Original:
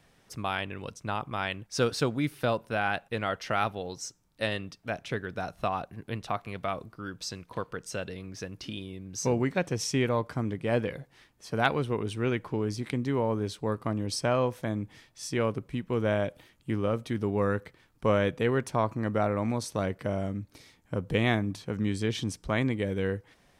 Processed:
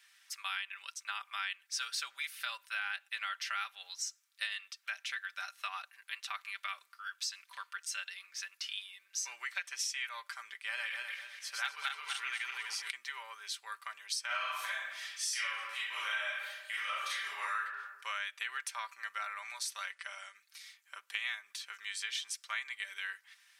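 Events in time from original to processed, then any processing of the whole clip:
10.65–12.91 s: backward echo that repeats 124 ms, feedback 56%, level 0 dB
14.26–17.61 s: reverb throw, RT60 0.89 s, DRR -9.5 dB
19.92–20.35 s: brick-wall FIR band-pass 320–11000 Hz
whole clip: high-pass 1.5 kHz 24 dB/octave; comb 5.1 ms, depth 59%; compression 4:1, threshold -37 dBFS; trim +2.5 dB

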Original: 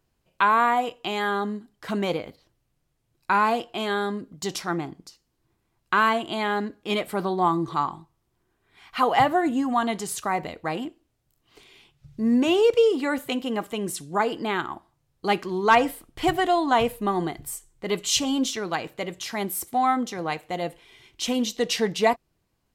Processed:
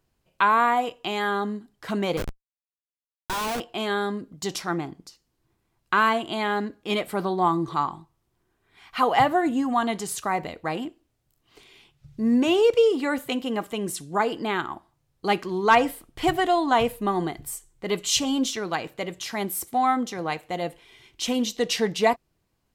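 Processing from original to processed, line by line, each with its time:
2.17–3.60 s: Schmitt trigger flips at -32.5 dBFS

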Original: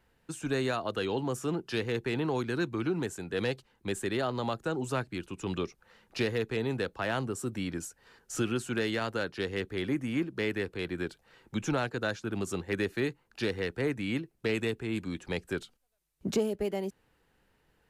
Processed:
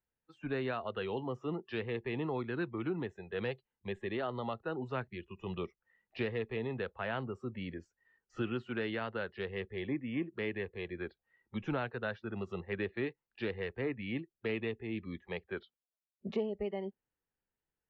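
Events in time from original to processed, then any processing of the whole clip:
15.22–16.50 s: high-pass 120 Hz 6 dB/octave
whole clip: low-pass 3.2 kHz 24 dB/octave; spectral noise reduction 19 dB; trim -5 dB

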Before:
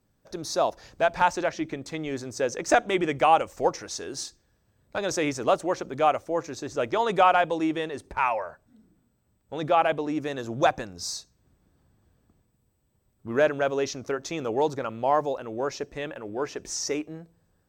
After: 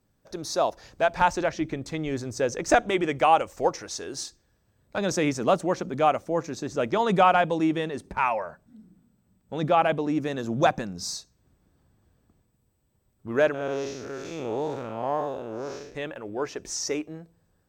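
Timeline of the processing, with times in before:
1.19–2.91 s: bass shelf 160 Hz +9.5 dB
4.97–11.16 s: peaking EQ 190 Hz +10.5 dB
13.54–15.95 s: spectral blur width 194 ms

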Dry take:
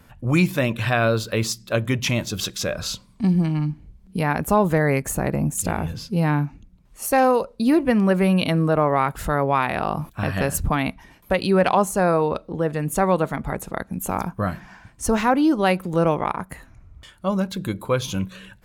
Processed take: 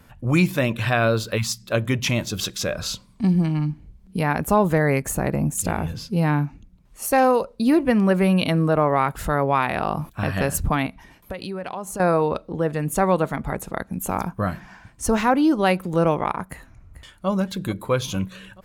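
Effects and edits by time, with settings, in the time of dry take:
1.37–1.62 s: spectral selection erased 230–700 Hz
10.86–12.00 s: compression 4:1, threshold -29 dBFS
16.47–17.28 s: echo throw 440 ms, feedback 65%, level -15 dB

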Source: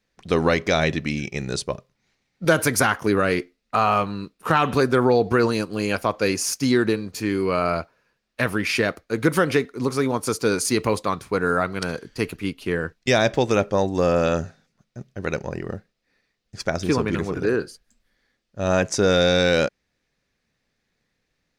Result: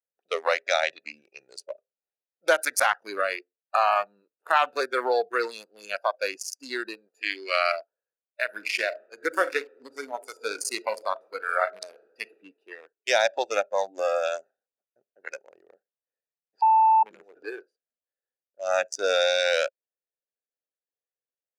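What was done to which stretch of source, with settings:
7.21–7.72 s: frequency weighting D
8.43–12.32 s: reverb throw, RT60 0.97 s, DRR 5.5 dB
16.62–17.03 s: bleep 884 Hz -13.5 dBFS
whole clip: local Wiener filter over 41 samples; high-pass 510 Hz 24 dB/octave; spectral noise reduction 15 dB

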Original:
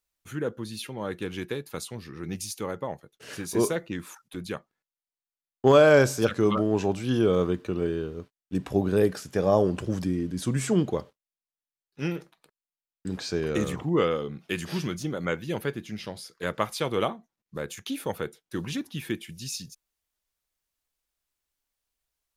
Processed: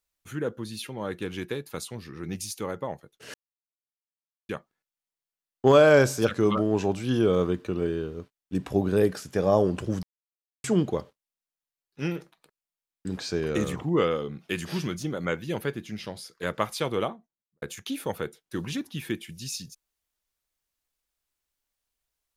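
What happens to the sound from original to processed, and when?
3.34–4.49 s: mute
10.03–10.64 s: mute
16.82–17.62 s: studio fade out

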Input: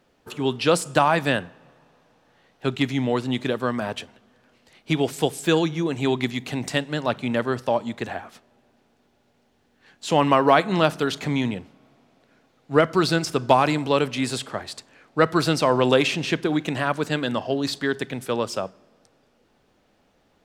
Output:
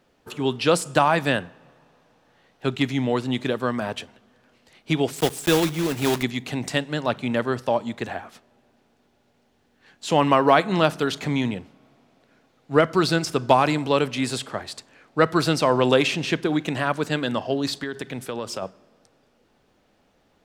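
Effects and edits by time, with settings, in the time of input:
5.16–6.25 s: block-companded coder 3-bit
17.83–18.62 s: compression, threshold -25 dBFS

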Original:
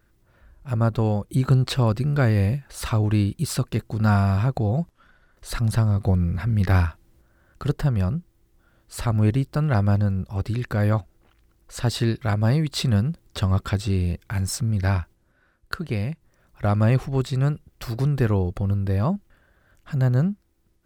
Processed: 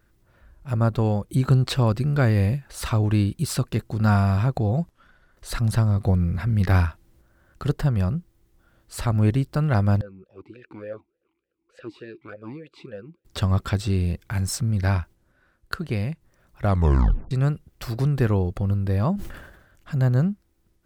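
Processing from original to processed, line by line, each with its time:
10.01–13.25 s: talking filter e-u 3.4 Hz
16.68 s: tape stop 0.63 s
19.14–19.97 s: decay stretcher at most 59 dB/s

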